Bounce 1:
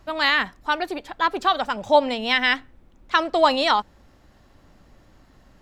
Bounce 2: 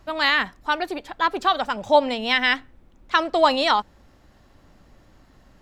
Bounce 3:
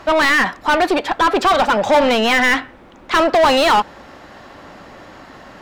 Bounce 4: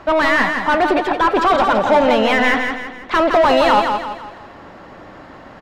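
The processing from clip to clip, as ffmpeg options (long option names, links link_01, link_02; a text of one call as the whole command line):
ffmpeg -i in.wav -af anull out.wav
ffmpeg -i in.wav -filter_complex "[0:a]asplit=2[link_01][link_02];[link_02]highpass=frequency=720:poles=1,volume=31dB,asoftclip=type=tanh:threshold=-4dB[link_03];[link_01][link_03]amix=inputs=2:normalize=0,lowpass=frequency=1900:poles=1,volume=-6dB,volume=-1dB" out.wav
ffmpeg -i in.wav -filter_complex "[0:a]highshelf=frequency=3600:gain=-11.5,asplit=2[link_01][link_02];[link_02]aecho=0:1:165|330|495|660|825:0.531|0.223|0.0936|0.0393|0.0165[link_03];[link_01][link_03]amix=inputs=2:normalize=0" out.wav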